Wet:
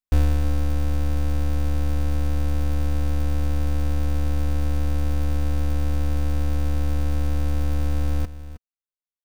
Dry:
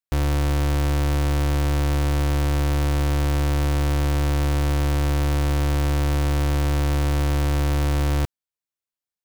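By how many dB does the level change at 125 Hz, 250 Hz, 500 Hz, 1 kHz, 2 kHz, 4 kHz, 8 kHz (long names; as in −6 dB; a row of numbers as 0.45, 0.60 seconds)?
−2.0, −4.5, −6.5, −8.5, −9.0, −9.0, −8.5 decibels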